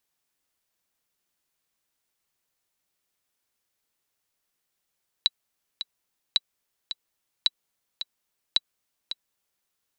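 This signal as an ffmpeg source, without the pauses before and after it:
ffmpeg -f lavfi -i "aevalsrc='pow(10,(-6.5-11*gte(mod(t,2*60/109),60/109))/20)*sin(2*PI*3920*mod(t,60/109))*exp(-6.91*mod(t,60/109)/0.03)':duration=4.4:sample_rate=44100" out.wav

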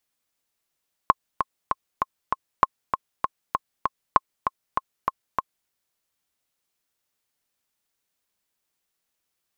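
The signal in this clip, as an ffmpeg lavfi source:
ffmpeg -f lavfi -i "aevalsrc='pow(10,(-1.5-7*gte(mod(t,5*60/196),60/196))/20)*sin(2*PI*1070*mod(t,60/196))*exp(-6.91*mod(t,60/196)/0.03)':duration=4.59:sample_rate=44100" out.wav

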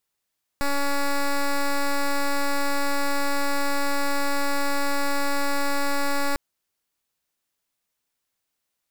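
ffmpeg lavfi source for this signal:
ffmpeg -f lavfi -i "aevalsrc='0.0794*(2*lt(mod(282*t,1),0.09)-1)':duration=5.75:sample_rate=44100" out.wav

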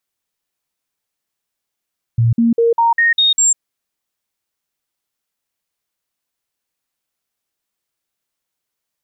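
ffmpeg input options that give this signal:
ffmpeg -f lavfi -i "aevalsrc='0.335*clip(min(mod(t,0.2),0.15-mod(t,0.2))/0.005,0,1)*sin(2*PI*116*pow(2,floor(t/0.2)/1)*mod(t,0.2))':duration=1.4:sample_rate=44100" out.wav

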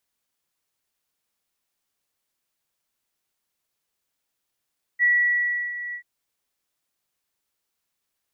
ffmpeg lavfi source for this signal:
ffmpeg -f lavfi -i "aevalsrc='0.178*sin(2*PI*1940*t)':duration=1.035:sample_rate=44100,afade=type=in:duration=0.039,afade=type=out:start_time=0.039:duration=0.697:silence=0.2,afade=type=out:start_time=0.95:duration=0.085" out.wav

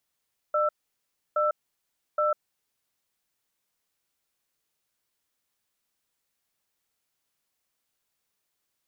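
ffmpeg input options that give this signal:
ffmpeg -f lavfi -i "aevalsrc='0.0631*(sin(2*PI*603*t)+sin(2*PI*1330*t))*clip(min(mod(t,0.82),0.15-mod(t,0.82))/0.005,0,1)':duration=2.19:sample_rate=44100" out.wav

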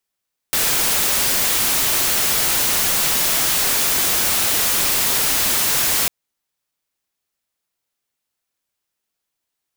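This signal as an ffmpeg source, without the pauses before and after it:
ffmpeg -f lavfi -i "anoisesrc=color=white:amplitude=0.218:duration=5.55:sample_rate=44100:seed=1" out.wav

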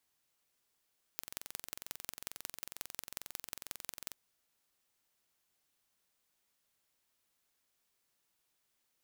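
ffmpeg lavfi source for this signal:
ffmpeg -f lavfi -i "aevalsrc='0.282*eq(mod(n,1986),0)*(0.5+0.5*eq(mod(n,7944),0))':duration=2.94:sample_rate=44100" out.wav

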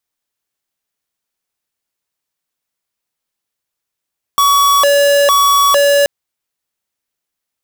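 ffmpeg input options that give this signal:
ffmpeg -f lavfi -i "aevalsrc='0.316*(2*lt(mod((849.5*t+280.5/1.1*(0.5-abs(mod(1.1*t,1)-0.5))),1),0.5)-1)':duration=1.68:sample_rate=44100" out.wav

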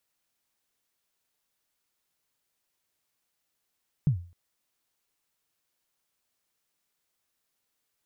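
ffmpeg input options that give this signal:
ffmpeg -f lavfi -i "aevalsrc='0.158*pow(10,-3*t/0.39)*sin(2*PI*(160*0.1/log(87/160)*(exp(log(87/160)*min(t,0.1)/0.1)-1)+87*max(t-0.1,0)))':duration=0.26:sample_rate=44100" out.wav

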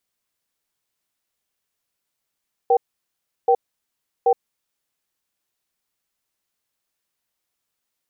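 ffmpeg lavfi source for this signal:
ffmpeg -f lavfi -i "aevalsrc='0.178*(sin(2*PI*477*t)+sin(2*PI*775*t))*clip(min(mod(t,0.78),0.07-mod(t,0.78))/0.005,0,1)':duration=2.33:sample_rate=44100" out.wav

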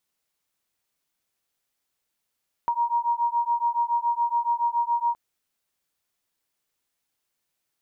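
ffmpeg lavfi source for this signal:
ffmpeg -f lavfi -i "aevalsrc='0.0596*(sin(2*PI*941*t)+sin(2*PI*948.1*t))':duration=2.47:sample_rate=44100" out.wav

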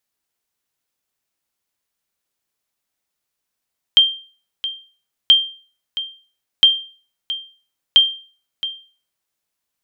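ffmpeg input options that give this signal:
ffmpeg -f lavfi -i "aevalsrc='0.708*(sin(2*PI*3170*mod(t,1.33))*exp(-6.91*mod(t,1.33)/0.4)+0.2*sin(2*PI*3170*max(mod(t,1.33)-0.67,0))*exp(-6.91*max(mod(t,1.33)-0.67,0)/0.4))':duration=5.32:sample_rate=44100" out.wav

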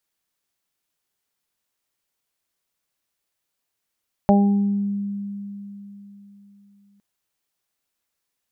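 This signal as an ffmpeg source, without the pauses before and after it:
ffmpeg -f lavfi -i "aevalsrc='0.251*pow(10,-3*t/3.75)*sin(2*PI*201*t)+0.0891*pow(10,-3*t/1.03)*sin(2*PI*402*t)+0.2*pow(10,-3*t/0.29)*sin(2*PI*603*t)+0.141*pow(10,-3*t/0.63)*sin(2*PI*804*t)':duration=2.71:sample_rate=44100" out.wav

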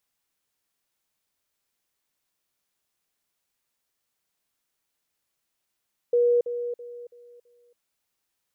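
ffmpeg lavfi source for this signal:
ffmpeg -f lavfi -i "aevalsrc='pow(10,(-17-10*floor(t/0.33))/20)*sin(2*PI*481*t)*clip(min(mod(t,0.33),0.28-mod(t,0.33))/0.005,0,1)':duration=1.65:sample_rate=44100" out.wav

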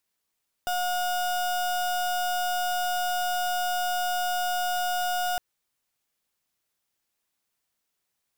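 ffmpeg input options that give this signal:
ffmpeg -f lavfi -i "aevalsrc='0.0447*(2*lt(mod(720*t,1),0.34)-1)':duration=4.71:sample_rate=44100" out.wav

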